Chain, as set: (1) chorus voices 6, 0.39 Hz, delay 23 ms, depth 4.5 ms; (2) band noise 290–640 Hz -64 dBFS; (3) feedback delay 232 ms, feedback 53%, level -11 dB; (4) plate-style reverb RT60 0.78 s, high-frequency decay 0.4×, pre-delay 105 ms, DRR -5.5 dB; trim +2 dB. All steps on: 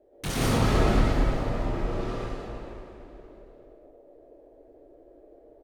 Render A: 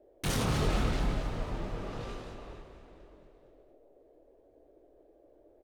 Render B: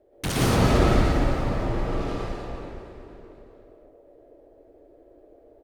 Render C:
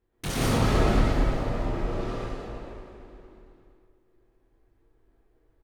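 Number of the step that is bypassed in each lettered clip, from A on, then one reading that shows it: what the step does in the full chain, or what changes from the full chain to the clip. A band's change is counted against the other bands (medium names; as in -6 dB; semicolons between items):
4, 8 kHz band +3.5 dB; 1, loudness change +3.0 LU; 2, momentary loudness spread change -1 LU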